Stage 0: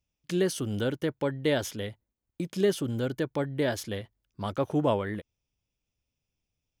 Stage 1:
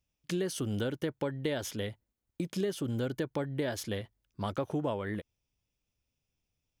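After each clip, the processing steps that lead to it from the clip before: compressor 6:1, threshold -29 dBFS, peak gain reduction 9.5 dB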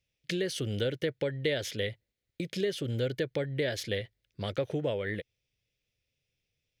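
graphic EQ 125/250/500/1000/2000/4000 Hz +7/-3/+11/-11/+12/+9 dB; gain -4 dB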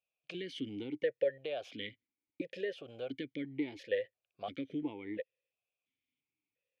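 vowel sequencer 2.9 Hz; gain +5 dB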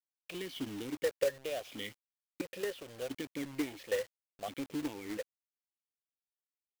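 companded quantiser 4-bit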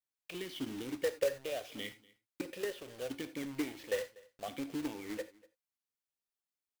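echo 0.243 s -23.5 dB; non-linear reverb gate 0.11 s flat, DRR 11 dB; gain -1 dB

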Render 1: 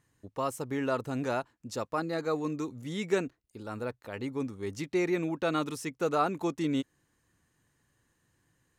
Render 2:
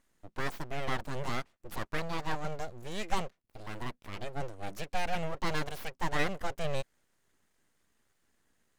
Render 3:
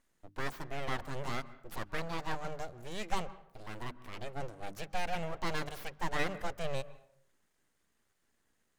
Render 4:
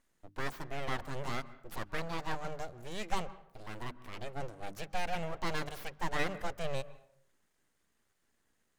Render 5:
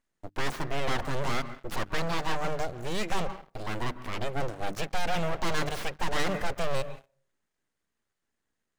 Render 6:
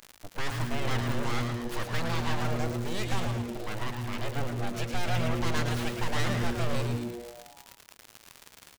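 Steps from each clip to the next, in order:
full-wave rectifier
notches 50/100/150/200/250/300 Hz; on a send at -17 dB: reverb RT60 0.65 s, pre-delay 0.123 s; on the sum: gain -2.5 dB
nothing audible
median filter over 3 samples; sample leveller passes 3
bell 370 Hz -3.5 dB 3 oct; crackle 82/s -29 dBFS; on a send: frequency-shifting echo 0.11 s, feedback 58%, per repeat -120 Hz, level -5.5 dB; on the sum: gain -1.5 dB

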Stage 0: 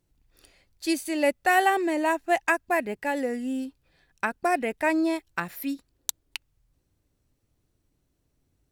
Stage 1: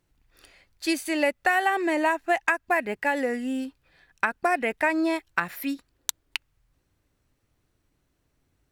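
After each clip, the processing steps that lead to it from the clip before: bell 1600 Hz +7.5 dB 2.3 oct; compressor 6:1, threshold -19 dBFS, peak gain reduction 8.5 dB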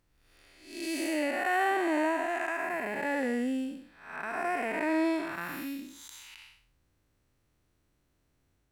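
time blur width 0.274 s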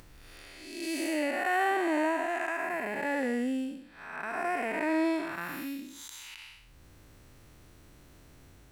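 upward compressor, threshold -39 dBFS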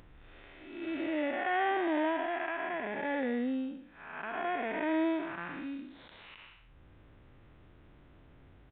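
in parallel at -5.5 dB: sample-and-hold 11×; on the sum: downsampling 8000 Hz; gain -5.5 dB

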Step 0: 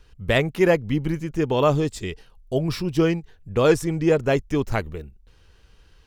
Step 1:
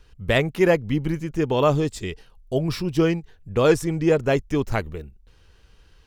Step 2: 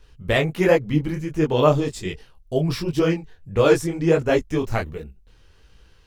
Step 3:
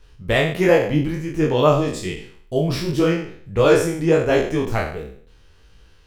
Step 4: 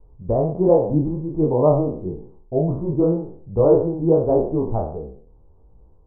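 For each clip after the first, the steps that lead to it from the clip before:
nothing audible
detuned doubles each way 48 cents; gain +4.5 dB
spectral trails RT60 0.56 s
steep low-pass 960 Hz 48 dB/oct

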